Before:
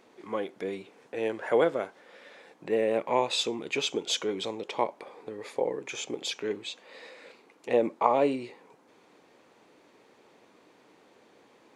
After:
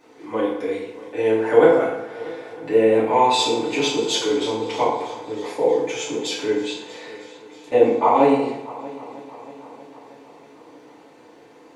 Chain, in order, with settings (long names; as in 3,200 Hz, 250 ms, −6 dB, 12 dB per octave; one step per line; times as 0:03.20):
0:07.15–0:07.72: downward compressor, threshold −54 dBFS, peak gain reduction 21 dB
echo machine with several playback heads 317 ms, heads first and second, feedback 61%, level −21.5 dB
feedback delay network reverb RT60 0.89 s, low-frequency decay 1×, high-frequency decay 0.65×, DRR −9 dB
level −1 dB